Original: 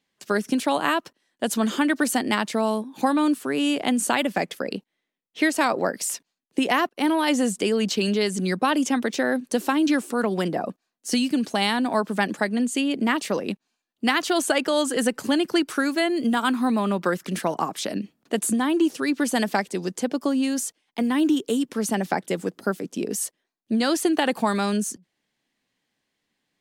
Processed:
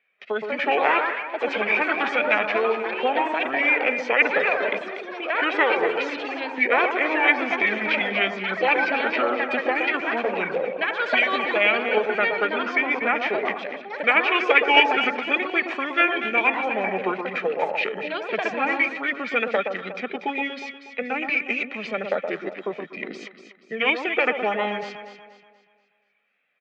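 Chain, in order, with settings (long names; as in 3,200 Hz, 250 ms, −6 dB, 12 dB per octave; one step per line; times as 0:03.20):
parametric band 1,700 Hz −7.5 dB 0.55 octaves
comb filter 1.6 ms, depth 70%
in parallel at 0 dB: output level in coarse steps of 17 dB
on the sum: tape wow and flutter 75 cents
formants moved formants −5 semitones
on a send: delay that swaps between a low-pass and a high-pass 120 ms, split 1,200 Hz, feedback 62%, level −5.5 dB
on the sum: delay with pitch and tempo change per echo 270 ms, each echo +5 semitones, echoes 3, each echo −6 dB
loudspeaker in its box 490–2,800 Hz, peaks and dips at 1,100 Hz −3 dB, 1,600 Hz +7 dB, 2,300 Hz +10 dB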